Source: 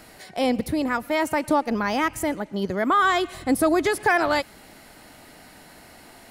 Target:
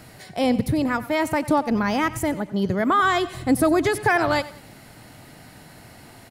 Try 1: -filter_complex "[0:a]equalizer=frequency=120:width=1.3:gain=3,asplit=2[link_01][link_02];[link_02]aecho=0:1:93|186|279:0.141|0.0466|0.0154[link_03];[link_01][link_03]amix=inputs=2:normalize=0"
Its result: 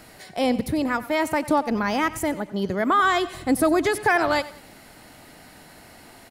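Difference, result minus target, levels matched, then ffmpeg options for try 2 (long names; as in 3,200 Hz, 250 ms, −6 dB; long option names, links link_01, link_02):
125 Hz band −5.5 dB
-filter_complex "[0:a]equalizer=frequency=120:width=1.3:gain=13,asplit=2[link_01][link_02];[link_02]aecho=0:1:93|186|279:0.141|0.0466|0.0154[link_03];[link_01][link_03]amix=inputs=2:normalize=0"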